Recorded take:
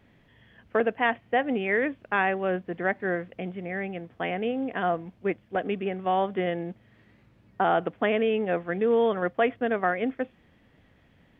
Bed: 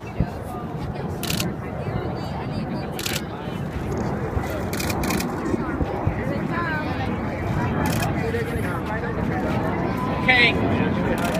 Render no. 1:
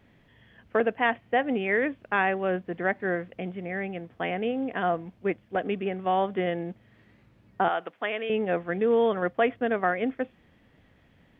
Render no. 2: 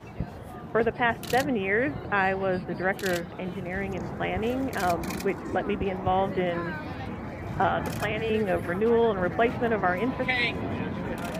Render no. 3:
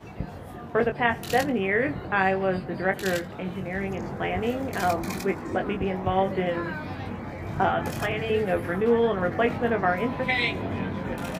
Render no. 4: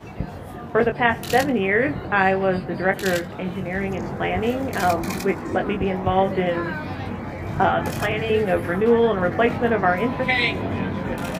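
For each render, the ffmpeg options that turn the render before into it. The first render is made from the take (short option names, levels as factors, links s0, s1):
-filter_complex "[0:a]asettb=1/sr,asplit=3[s0][s1][s2];[s0]atrim=end=7.684[s3];[s1]atrim=start=7.68:end=8.3,asetpts=PTS-STARTPTS,afade=t=in:d=0.004:c=qsin,afade=t=out:st=0.616:d=0.004:c=qsin,highpass=f=1100:p=1[s4];[s2]atrim=start=8.296[s5];[s3][s4]acrossfade=d=0.004:c1=hsin:c2=qsin[s6];[s6][s5]acrossfade=d=0.004:c1=qsin:c2=hsin"
-filter_complex "[1:a]volume=0.316[s0];[0:a][s0]amix=inputs=2:normalize=0"
-filter_complex "[0:a]asplit=2[s0][s1];[s1]adelay=21,volume=0.501[s2];[s0][s2]amix=inputs=2:normalize=0,aecho=1:1:84|168|252:0.0631|0.0284|0.0128"
-af "volume=1.68"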